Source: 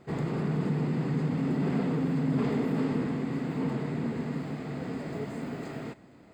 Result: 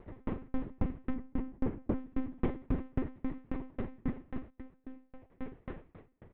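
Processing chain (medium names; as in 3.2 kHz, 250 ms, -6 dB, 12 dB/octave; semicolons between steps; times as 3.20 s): 1.14–1.97 s: treble shelf 2.4 kHz -10 dB; 4.50–5.31 s: inharmonic resonator 84 Hz, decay 0.61 s, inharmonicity 0.008; distance through air 320 m; multi-tap echo 118/676 ms -14.5/-18.5 dB; monotone LPC vocoder at 8 kHz 260 Hz; sawtooth tremolo in dB decaying 3.7 Hz, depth 38 dB; trim +3.5 dB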